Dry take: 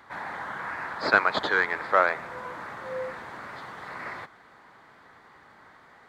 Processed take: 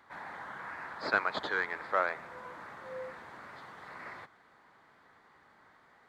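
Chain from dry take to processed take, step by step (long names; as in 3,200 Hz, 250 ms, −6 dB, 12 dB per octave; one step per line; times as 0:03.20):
mains-hum notches 60/120 Hz
level −8.5 dB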